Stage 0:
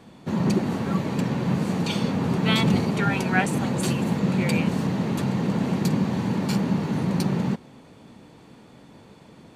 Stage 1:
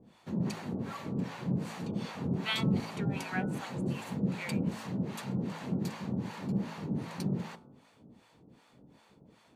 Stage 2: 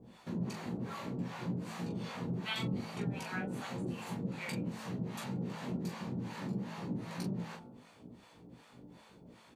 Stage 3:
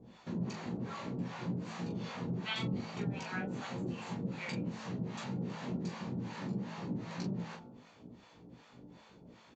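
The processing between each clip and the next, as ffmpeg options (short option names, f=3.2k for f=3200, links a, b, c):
-filter_complex "[0:a]acrossover=split=630[a][b];[a]aeval=exprs='val(0)*(1-1/2+1/2*cos(2*PI*2.6*n/s))':c=same[c];[b]aeval=exprs='val(0)*(1-1/2-1/2*cos(2*PI*2.6*n/s))':c=same[d];[c][d]amix=inputs=2:normalize=0,bandreject=f=54.67:t=h:w=4,bandreject=f=109.34:t=h:w=4,bandreject=f=164.01:t=h:w=4,bandreject=f=218.68:t=h:w=4,bandreject=f=273.35:t=h:w=4,bandreject=f=328.02:t=h:w=4,bandreject=f=382.69:t=h:w=4,bandreject=f=437.36:t=h:w=4,bandreject=f=492.03:t=h:w=4,bandreject=f=546.7:t=h:w=4,bandreject=f=601.37:t=h:w=4,bandreject=f=656.04:t=h:w=4,bandreject=f=710.71:t=h:w=4,bandreject=f=765.38:t=h:w=4,bandreject=f=820.05:t=h:w=4,bandreject=f=874.72:t=h:w=4,bandreject=f=929.39:t=h:w=4,bandreject=f=984.06:t=h:w=4,bandreject=f=1.03873k:t=h:w=4,bandreject=f=1.0934k:t=h:w=4,bandreject=f=1.14807k:t=h:w=4,bandreject=f=1.20274k:t=h:w=4,bandreject=f=1.25741k:t=h:w=4,bandreject=f=1.31208k:t=h:w=4,bandreject=f=1.36675k:t=h:w=4,bandreject=f=1.42142k:t=h:w=4,bandreject=f=1.47609k:t=h:w=4,volume=-6dB"
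-filter_complex "[0:a]acompressor=threshold=-44dB:ratio=2,asplit=2[a][b];[b]aecho=0:1:17|41:0.668|0.531[c];[a][c]amix=inputs=2:normalize=0,volume=1dB"
-af "aresample=16000,aresample=44100"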